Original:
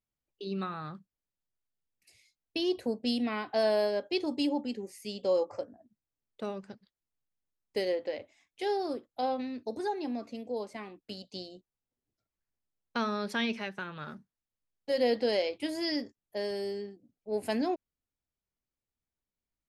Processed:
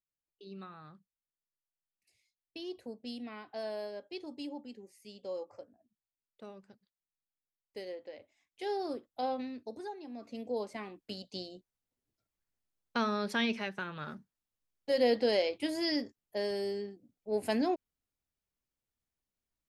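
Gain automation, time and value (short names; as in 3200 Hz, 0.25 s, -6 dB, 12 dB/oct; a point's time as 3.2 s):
8.11 s -12 dB
8.82 s -3 dB
9.44 s -3 dB
10.07 s -12 dB
10.41 s 0 dB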